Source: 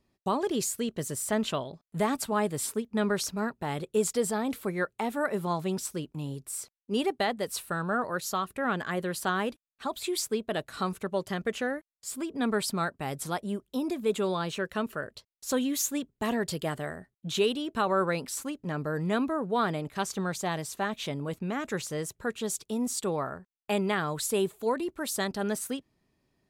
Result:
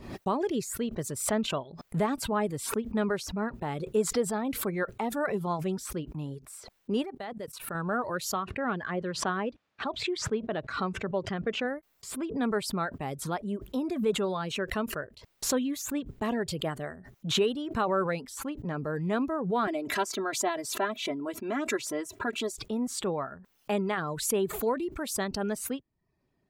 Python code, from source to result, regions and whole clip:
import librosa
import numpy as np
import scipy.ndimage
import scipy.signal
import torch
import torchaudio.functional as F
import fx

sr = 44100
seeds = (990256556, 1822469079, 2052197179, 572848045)

y = fx.chain(x, sr, fx.hum_notches(base_hz=50, count=3),
    fx.level_steps(step_db=18), at=(7.02, 7.75))
y = fx.chain(y, sr, fx.highpass(hz=75.0, slope=12),
    fx.air_absorb(metres=150.0), at=(8.36, 11.65))
y = fx.chain(y, sr, fx.highpass(hz=200.0, slope=12),
    fx.comb(ms=3.0, depth=0.97), at=(19.67, 22.52))
y = fx.dereverb_blind(y, sr, rt60_s=0.52)
y = fx.high_shelf(y, sr, hz=3500.0, db=-11.0)
y = fx.pre_swell(y, sr, db_per_s=76.0)